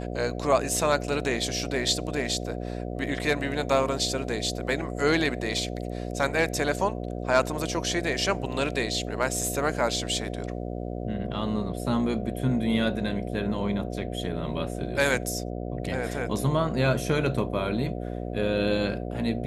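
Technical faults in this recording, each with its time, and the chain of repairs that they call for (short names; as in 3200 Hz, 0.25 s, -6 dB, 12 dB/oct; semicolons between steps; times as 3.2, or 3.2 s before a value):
buzz 60 Hz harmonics 12 -33 dBFS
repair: de-hum 60 Hz, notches 12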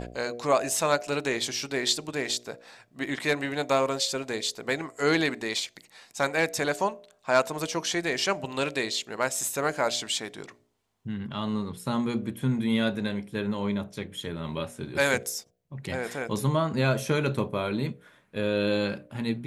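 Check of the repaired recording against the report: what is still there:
none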